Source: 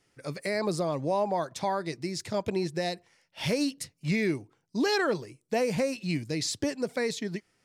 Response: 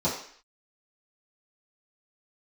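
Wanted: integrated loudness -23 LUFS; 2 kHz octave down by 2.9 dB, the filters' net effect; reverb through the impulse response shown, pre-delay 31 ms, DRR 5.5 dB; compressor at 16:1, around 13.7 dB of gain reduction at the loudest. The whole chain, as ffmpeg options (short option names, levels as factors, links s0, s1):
-filter_complex "[0:a]equalizer=f=2000:t=o:g=-3.5,acompressor=threshold=0.0141:ratio=16,asplit=2[s0][s1];[1:a]atrim=start_sample=2205,adelay=31[s2];[s1][s2]afir=irnorm=-1:irlink=0,volume=0.15[s3];[s0][s3]amix=inputs=2:normalize=0,volume=6.68"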